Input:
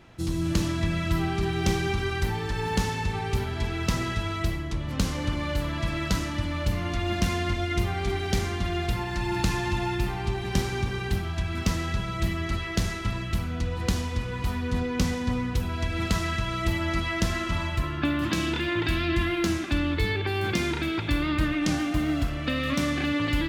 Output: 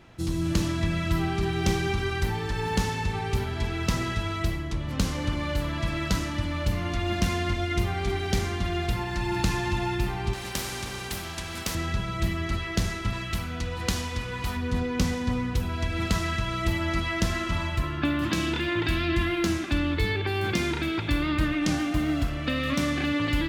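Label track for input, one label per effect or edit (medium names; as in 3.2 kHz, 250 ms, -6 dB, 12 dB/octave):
10.330000	11.750000	spectrum-flattening compressor 2:1
13.130000	14.570000	tilt shelf lows -3.5 dB, about 660 Hz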